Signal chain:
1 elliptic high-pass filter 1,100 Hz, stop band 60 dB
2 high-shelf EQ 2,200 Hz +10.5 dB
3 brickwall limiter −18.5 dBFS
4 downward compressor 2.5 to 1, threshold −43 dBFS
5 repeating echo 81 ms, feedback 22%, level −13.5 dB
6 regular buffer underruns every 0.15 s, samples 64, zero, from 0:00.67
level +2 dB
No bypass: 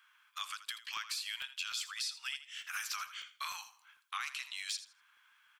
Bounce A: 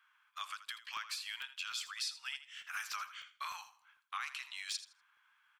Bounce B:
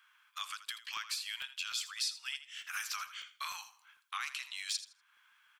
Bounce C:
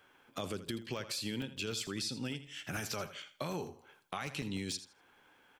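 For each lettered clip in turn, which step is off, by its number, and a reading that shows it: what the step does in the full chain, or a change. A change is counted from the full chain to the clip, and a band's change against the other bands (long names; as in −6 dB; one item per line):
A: 2, 1 kHz band +2.5 dB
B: 3, change in momentary loudness spread +2 LU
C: 1, 2 kHz band −2.0 dB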